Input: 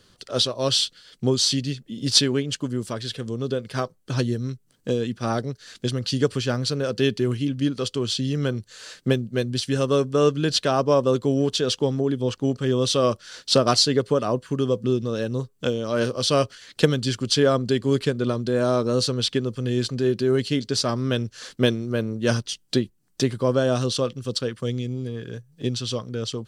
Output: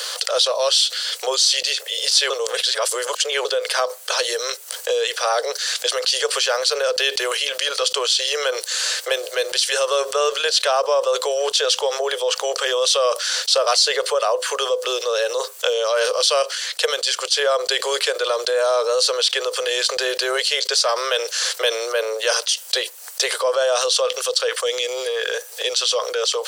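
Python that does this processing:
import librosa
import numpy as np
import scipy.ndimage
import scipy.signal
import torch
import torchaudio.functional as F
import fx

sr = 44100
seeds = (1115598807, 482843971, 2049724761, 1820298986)

y = fx.upward_expand(x, sr, threshold_db=-31.0, expansion=1.5, at=(16.42, 17.45))
y = fx.edit(y, sr, fx.reverse_span(start_s=2.3, length_s=1.15), tone=tone)
y = scipy.signal.sosfilt(scipy.signal.butter(12, 470.0, 'highpass', fs=sr, output='sos'), y)
y = fx.high_shelf(y, sr, hz=3400.0, db=7.0)
y = fx.env_flatten(y, sr, amount_pct=70)
y = F.gain(torch.from_numpy(y), -5.0).numpy()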